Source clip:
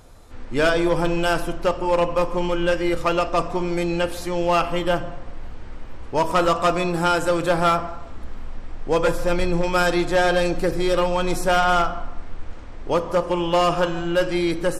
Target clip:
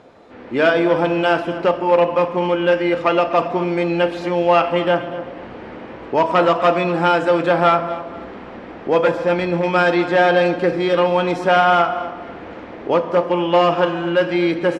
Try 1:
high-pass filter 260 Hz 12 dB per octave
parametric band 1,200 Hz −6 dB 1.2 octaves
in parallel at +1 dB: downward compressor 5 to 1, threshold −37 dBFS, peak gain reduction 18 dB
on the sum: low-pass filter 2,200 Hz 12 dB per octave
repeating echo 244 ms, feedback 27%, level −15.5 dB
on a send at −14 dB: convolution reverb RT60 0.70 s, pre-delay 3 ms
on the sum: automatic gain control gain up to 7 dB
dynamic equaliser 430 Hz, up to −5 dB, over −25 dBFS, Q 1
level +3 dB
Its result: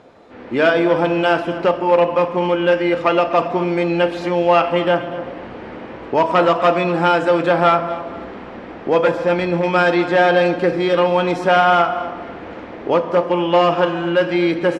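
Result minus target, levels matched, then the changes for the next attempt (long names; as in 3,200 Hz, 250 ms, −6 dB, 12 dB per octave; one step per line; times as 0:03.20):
downward compressor: peak gain reduction −9 dB
change: downward compressor 5 to 1, threshold −48.5 dBFS, peak gain reduction 27 dB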